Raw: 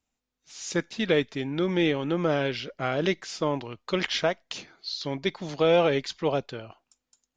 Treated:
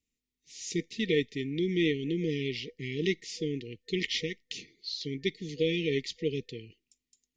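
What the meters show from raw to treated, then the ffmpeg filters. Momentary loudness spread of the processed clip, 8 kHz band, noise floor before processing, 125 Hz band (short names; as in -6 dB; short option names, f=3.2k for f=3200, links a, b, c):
11 LU, n/a, -85 dBFS, -3.0 dB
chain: -af "afftfilt=real='re*(1-between(b*sr/4096,490,1800))':imag='im*(1-between(b*sr/4096,490,1800))':win_size=4096:overlap=0.75,volume=-3dB"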